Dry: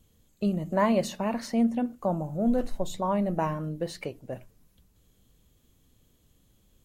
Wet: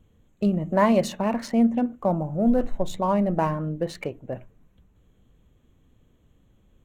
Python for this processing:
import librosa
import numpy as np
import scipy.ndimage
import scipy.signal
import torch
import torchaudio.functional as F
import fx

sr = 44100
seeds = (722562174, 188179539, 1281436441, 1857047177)

y = fx.wiener(x, sr, points=9)
y = y * 10.0 ** (4.5 / 20.0)